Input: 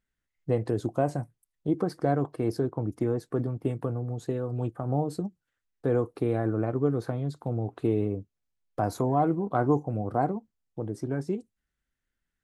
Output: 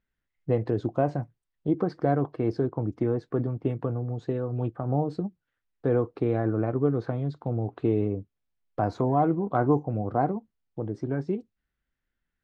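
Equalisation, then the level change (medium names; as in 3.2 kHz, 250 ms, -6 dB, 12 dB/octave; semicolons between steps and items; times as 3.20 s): low-pass 4.4 kHz 12 dB/octave; distance through air 79 m; +1.5 dB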